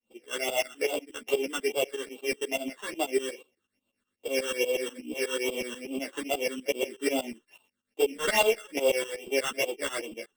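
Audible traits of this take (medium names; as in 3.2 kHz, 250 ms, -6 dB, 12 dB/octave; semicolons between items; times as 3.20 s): a buzz of ramps at a fixed pitch in blocks of 16 samples; phasing stages 8, 2.4 Hz, lowest notch 650–1800 Hz; tremolo saw up 8.2 Hz, depth 95%; a shimmering, thickened sound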